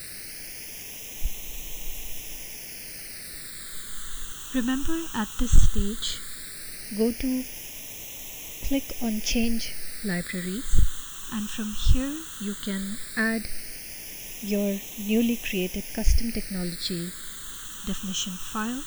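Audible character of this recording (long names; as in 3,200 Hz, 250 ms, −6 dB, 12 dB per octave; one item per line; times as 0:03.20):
a quantiser's noise floor 6 bits, dither triangular
phaser sweep stages 8, 0.15 Hz, lowest notch 640–1,400 Hz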